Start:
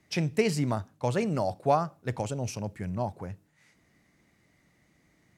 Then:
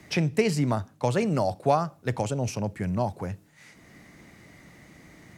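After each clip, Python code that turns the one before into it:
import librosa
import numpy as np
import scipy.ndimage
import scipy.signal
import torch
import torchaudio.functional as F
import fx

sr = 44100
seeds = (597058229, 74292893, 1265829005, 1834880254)

y = fx.band_squash(x, sr, depth_pct=40)
y = y * librosa.db_to_amplitude(3.5)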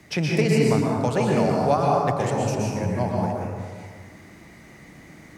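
y = fx.rev_plate(x, sr, seeds[0], rt60_s=1.8, hf_ratio=0.5, predelay_ms=105, drr_db=-3.0)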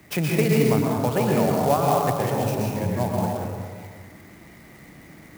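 y = fx.clock_jitter(x, sr, seeds[1], jitter_ms=0.037)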